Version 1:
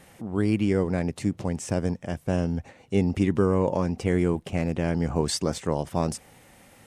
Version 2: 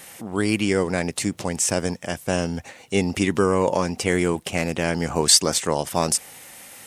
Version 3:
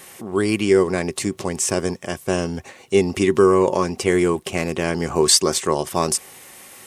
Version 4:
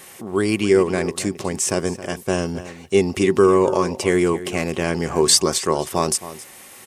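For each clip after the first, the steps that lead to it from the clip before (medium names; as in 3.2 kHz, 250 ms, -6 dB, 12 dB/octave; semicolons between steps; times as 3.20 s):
tilt EQ +3 dB/octave; trim +7 dB
small resonant body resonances 380/1100 Hz, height 12 dB, ringing for 85 ms
echo from a far wall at 46 m, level -14 dB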